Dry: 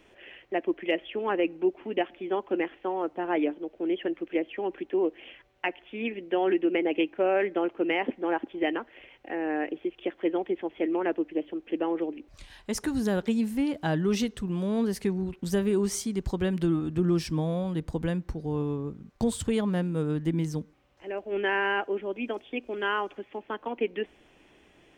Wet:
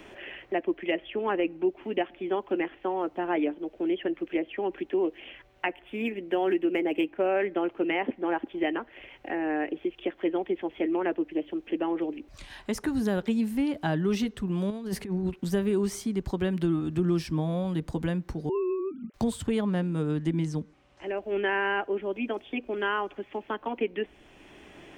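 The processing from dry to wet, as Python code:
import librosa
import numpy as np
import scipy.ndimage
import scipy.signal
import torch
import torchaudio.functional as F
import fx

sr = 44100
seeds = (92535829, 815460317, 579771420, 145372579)

y = fx.median_filter(x, sr, points=5, at=(5.69, 7.27))
y = fx.over_compress(y, sr, threshold_db=-31.0, ratio=-0.5, at=(14.7, 15.3))
y = fx.sine_speech(y, sr, at=(18.49, 19.14))
y = fx.lowpass(y, sr, hz=10000.0, slope=24, at=(19.65, 21.22))
y = fx.notch(y, sr, hz=490.0, q=12.0)
y = fx.dynamic_eq(y, sr, hz=6900.0, q=0.89, threshold_db=-54.0, ratio=4.0, max_db=-4)
y = fx.band_squash(y, sr, depth_pct=40)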